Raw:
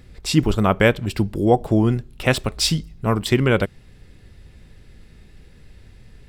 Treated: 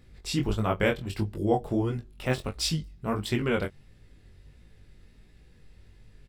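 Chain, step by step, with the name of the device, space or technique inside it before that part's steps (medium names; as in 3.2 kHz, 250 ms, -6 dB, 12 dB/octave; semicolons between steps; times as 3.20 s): double-tracked vocal (doubling 21 ms -12 dB; chorus 1.5 Hz, delay 17.5 ms, depth 6 ms); 1.30–2.46 s: de-esser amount 70%; trim -6 dB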